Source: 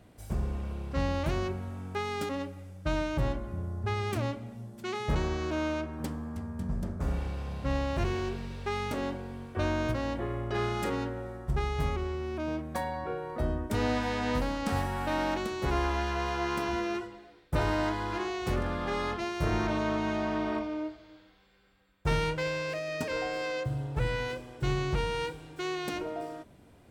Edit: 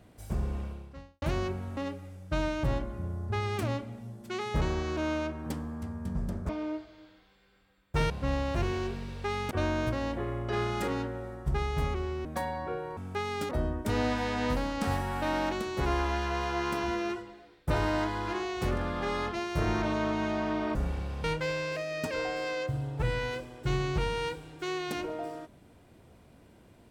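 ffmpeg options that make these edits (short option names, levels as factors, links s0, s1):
-filter_complex "[0:a]asplit=11[s0][s1][s2][s3][s4][s5][s6][s7][s8][s9][s10];[s0]atrim=end=1.22,asetpts=PTS-STARTPTS,afade=t=out:st=0.61:d=0.61:c=qua[s11];[s1]atrim=start=1.22:end=1.772,asetpts=PTS-STARTPTS,afade=t=in:d=0.004:c=hsin[s12];[s2]atrim=start=2.308:end=7.032[s13];[s3]atrim=start=20.598:end=22.212[s14];[s4]atrim=start=7.518:end=8.932[s15];[s5]atrim=start=9.528:end=12.272[s16];[s6]atrim=start=12.638:end=13.362[s17];[s7]atrim=start=1.768:end=2.312[s18];[s8]atrim=start=13.358:end=20.602[s19];[s9]atrim=start=7.028:end=7.522[s20];[s10]atrim=start=22.208[s21];[s11][s12]concat=n=2:v=0:a=1[s22];[s22][s13]acrossfade=d=0.004:c1=hsin:c2=hsin[s23];[s23][s14]acrossfade=d=0.004:c1=hsin:c2=hsin[s24];[s24][s15]acrossfade=d=0.004:c1=hsin:c2=hsin[s25];[s25][s16]acrossfade=d=0.004:c1=hsin:c2=hsin[s26];[s26][s17]acrossfade=d=0.004:c1=hsin:c2=hsin[s27];[s27][s18]acrossfade=d=0.004:c1=hsin:c2=hsin[s28];[s28][s19]acrossfade=d=0.004:c1=hsin:c2=hsin[s29];[s29][s20]acrossfade=d=0.004:c1=hsin:c2=hsin[s30];[s30][s21]acrossfade=d=0.004:c1=hsin:c2=hsin"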